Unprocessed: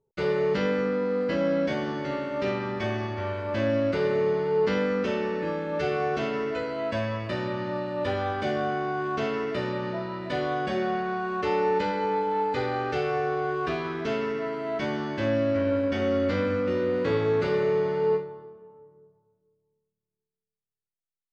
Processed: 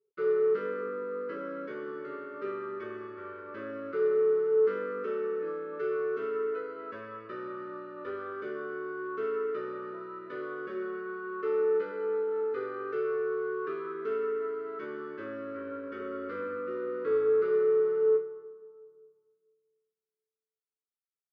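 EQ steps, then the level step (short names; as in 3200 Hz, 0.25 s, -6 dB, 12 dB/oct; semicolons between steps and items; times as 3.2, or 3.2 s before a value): double band-pass 740 Hz, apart 1.6 oct; +1.0 dB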